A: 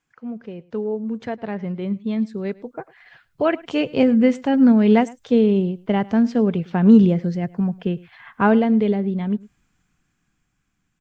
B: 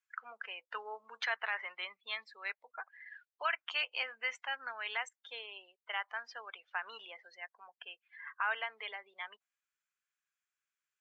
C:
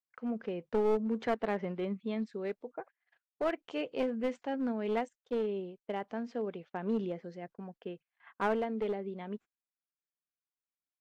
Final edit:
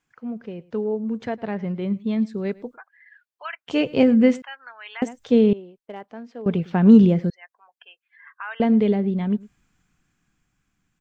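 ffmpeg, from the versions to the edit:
-filter_complex "[1:a]asplit=3[s0][s1][s2];[0:a]asplit=5[s3][s4][s5][s6][s7];[s3]atrim=end=2.78[s8];[s0]atrim=start=2.74:end=3.71[s9];[s4]atrim=start=3.67:end=4.422[s10];[s1]atrim=start=4.418:end=5.022[s11];[s5]atrim=start=5.018:end=5.532[s12];[2:a]atrim=start=5.528:end=6.462[s13];[s6]atrim=start=6.458:end=7.302[s14];[s2]atrim=start=7.298:end=8.602[s15];[s7]atrim=start=8.598[s16];[s8][s9]acrossfade=d=0.04:c1=tri:c2=tri[s17];[s17][s10]acrossfade=d=0.04:c1=tri:c2=tri[s18];[s18][s11]acrossfade=d=0.004:c1=hsin:c2=hsin[s19];[s19][s12]acrossfade=d=0.004:c1=hsin:c2=hsin[s20];[s20][s13]acrossfade=d=0.004:c1=hsin:c2=hsin[s21];[s21][s14]acrossfade=d=0.004:c1=hsin:c2=hsin[s22];[s22][s15]acrossfade=d=0.004:c1=hsin:c2=hsin[s23];[s23][s16]acrossfade=d=0.004:c1=hsin:c2=hsin"

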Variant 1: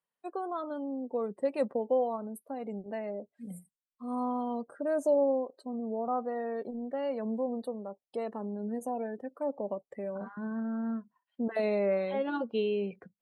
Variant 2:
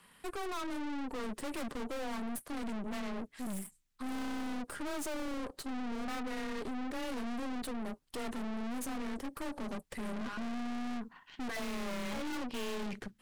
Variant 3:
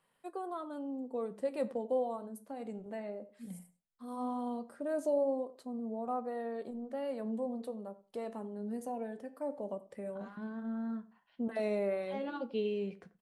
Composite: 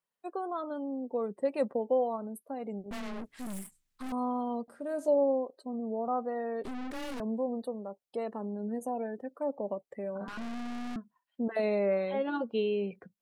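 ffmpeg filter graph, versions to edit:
-filter_complex "[1:a]asplit=3[s0][s1][s2];[0:a]asplit=5[s3][s4][s5][s6][s7];[s3]atrim=end=2.912[s8];[s0]atrim=start=2.908:end=4.122[s9];[s4]atrim=start=4.118:end=4.682[s10];[2:a]atrim=start=4.678:end=5.082[s11];[s5]atrim=start=5.078:end=6.642[s12];[s1]atrim=start=6.638:end=7.202[s13];[s6]atrim=start=7.198:end=10.282[s14];[s2]atrim=start=10.278:end=10.962[s15];[s7]atrim=start=10.958[s16];[s8][s9]acrossfade=d=0.004:c1=hsin:c2=hsin[s17];[s17][s10]acrossfade=d=0.004:c1=hsin:c2=hsin[s18];[s18][s11]acrossfade=d=0.004:c1=hsin:c2=hsin[s19];[s19][s12]acrossfade=d=0.004:c1=hsin:c2=hsin[s20];[s20][s13]acrossfade=d=0.004:c1=hsin:c2=hsin[s21];[s21][s14]acrossfade=d=0.004:c1=hsin:c2=hsin[s22];[s22][s15]acrossfade=d=0.004:c1=hsin:c2=hsin[s23];[s23][s16]acrossfade=d=0.004:c1=hsin:c2=hsin"

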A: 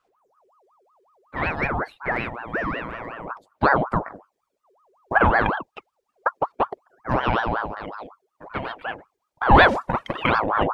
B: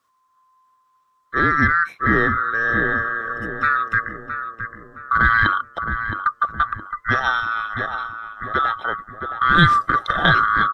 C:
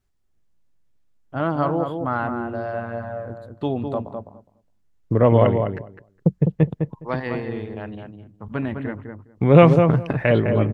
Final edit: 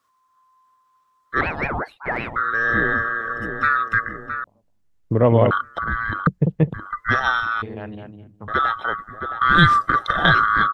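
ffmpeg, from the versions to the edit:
-filter_complex "[2:a]asplit=3[s0][s1][s2];[1:a]asplit=5[s3][s4][s5][s6][s7];[s3]atrim=end=1.412[s8];[0:a]atrim=start=1.408:end=2.362[s9];[s4]atrim=start=2.358:end=4.442[s10];[s0]atrim=start=4.438:end=5.512[s11];[s5]atrim=start=5.508:end=6.272[s12];[s1]atrim=start=6.268:end=6.742[s13];[s6]atrim=start=6.738:end=7.622[s14];[s2]atrim=start=7.618:end=8.482[s15];[s7]atrim=start=8.478[s16];[s8][s9]acrossfade=d=0.004:c1=hsin:c2=hsin[s17];[s17][s10]acrossfade=d=0.004:c1=hsin:c2=hsin[s18];[s18][s11]acrossfade=d=0.004:c1=hsin:c2=hsin[s19];[s19][s12]acrossfade=d=0.004:c1=hsin:c2=hsin[s20];[s20][s13]acrossfade=d=0.004:c1=hsin:c2=hsin[s21];[s21][s14]acrossfade=d=0.004:c1=hsin:c2=hsin[s22];[s22][s15]acrossfade=d=0.004:c1=hsin:c2=hsin[s23];[s23][s16]acrossfade=d=0.004:c1=hsin:c2=hsin"

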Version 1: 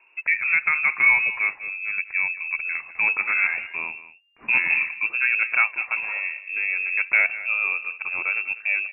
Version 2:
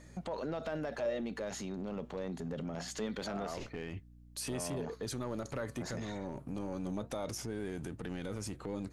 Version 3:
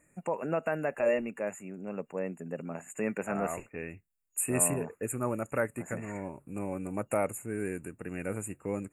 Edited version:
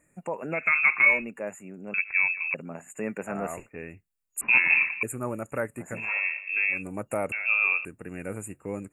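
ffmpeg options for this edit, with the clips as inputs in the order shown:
-filter_complex "[0:a]asplit=5[s0][s1][s2][s3][s4];[2:a]asplit=6[s5][s6][s7][s8][s9][s10];[s5]atrim=end=0.75[s11];[s0]atrim=start=0.51:end=1.25[s12];[s6]atrim=start=1.01:end=1.942[s13];[s1]atrim=start=1.938:end=2.542[s14];[s7]atrim=start=2.538:end=4.412[s15];[s2]atrim=start=4.408:end=5.032[s16];[s8]atrim=start=5.028:end=6.1[s17];[s3]atrim=start=5.94:end=6.84[s18];[s9]atrim=start=6.68:end=7.322[s19];[s4]atrim=start=7.318:end=7.852[s20];[s10]atrim=start=7.848[s21];[s11][s12]acrossfade=d=0.24:c1=tri:c2=tri[s22];[s22][s13]acrossfade=d=0.24:c1=tri:c2=tri[s23];[s23][s14]acrossfade=d=0.004:c1=hsin:c2=hsin[s24];[s24][s15]acrossfade=d=0.004:c1=hsin:c2=hsin[s25];[s25][s16]acrossfade=d=0.004:c1=hsin:c2=hsin[s26];[s26][s17]acrossfade=d=0.004:c1=hsin:c2=hsin[s27];[s27][s18]acrossfade=d=0.16:c1=tri:c2=tri[s28];[s28][s19]acrossfade=d=0.16:c1=tri:c2=tri[s29];[s29][s20]acrossfade=d=0.004:c1=hsin:c2=hsin[s30];[s30][s21]acrossfade=d=0.004:c1=hsin:c2=hsin"

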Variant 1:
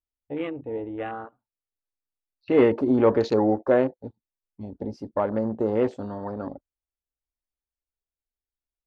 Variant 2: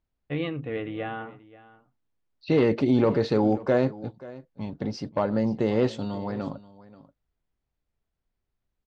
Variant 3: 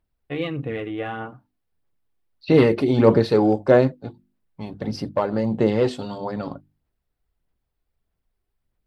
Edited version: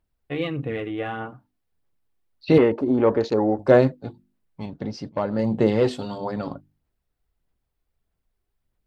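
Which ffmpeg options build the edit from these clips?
-filter_complex "[2:a]asplit=3[s0][s1][s2];[s0]atrim=end=2.582[s3];[0:a]atrim=start=2.578:end=3.592[s4];[s1]atrim=start=3.588:end=4.662[s5];[1:a]atrim=start=4.658:end=5.392[s6];[s2]atrim=start=5.388[s7];[s3][s4]acrossfade=d=0.004:c1=hsin:c2=hsin[s8];[s8][s5]acrossfade=d=0.004:c1=hsin:c2=hsin[s9];[s9][s6]acrossfade=d=0.004:c1=hsin:c2=hsin[s10];[s10][s7]acrossfade=d=0.004:c1=hsin:c2=hsin"

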